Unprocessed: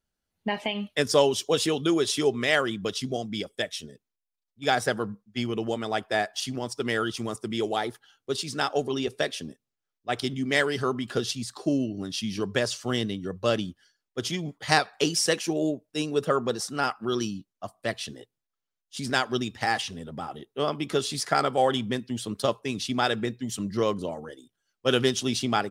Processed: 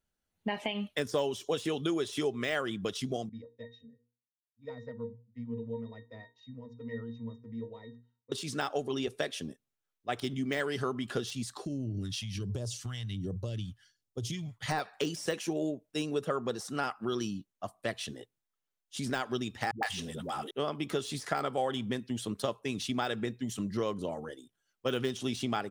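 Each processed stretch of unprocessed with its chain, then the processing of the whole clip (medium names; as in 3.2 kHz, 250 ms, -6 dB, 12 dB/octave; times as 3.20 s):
3.29–8.32 s: hum notches 60/120/180/240/300/360/420/480 Hz + pitch-class resonator A#, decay 0.21 s + careless resampling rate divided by 3×, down none, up filtered
11.65–14.66 s: peaking EQ 110 Hz +14.5 dB 0.59 oct + compression, threshold -29 dBFS + phase shifter stages 2, 1.3 Hz, lowest notch 330–1900 Hz
19.71–20.51 s: treble shelf 2.5 kHz +10 dB + phase dispersion highs, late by 117 ms, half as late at 300 Hz + tape noise reduction on one side only encoder only
whole clip: de-esser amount 70%; peaking EQ 4.8 kHz -4 dB 0.34 oct; compression 2.5:1, threshold -29 dBFS; trim -1.5 dB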